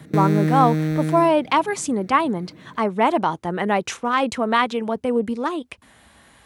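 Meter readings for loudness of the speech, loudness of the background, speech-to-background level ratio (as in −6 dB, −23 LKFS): −21.5 LKFS, −22.0 LKFS, 0.5 dB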